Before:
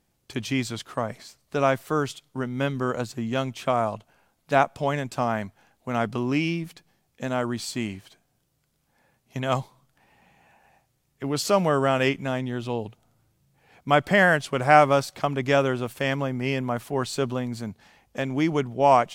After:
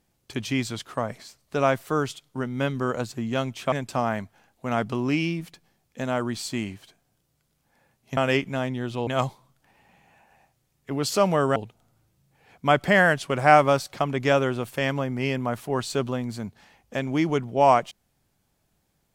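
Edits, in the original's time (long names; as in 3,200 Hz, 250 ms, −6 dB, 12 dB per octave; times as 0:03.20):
0:03.72–0:04.95: remove
0:11.89–0:12.79: move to 0:09.40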